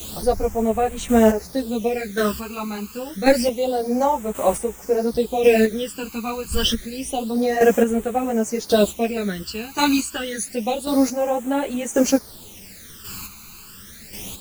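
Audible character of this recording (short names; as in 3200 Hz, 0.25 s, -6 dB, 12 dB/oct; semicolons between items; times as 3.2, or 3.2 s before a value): a quantiser's noise floor 6-bit, dither triangular; phasing stages 12, 0.28 Hz, lowest notch 570–4800 Hz; chopped level 0.92 Hz, depth 60%, duty 20%; a shimmering, thickened sound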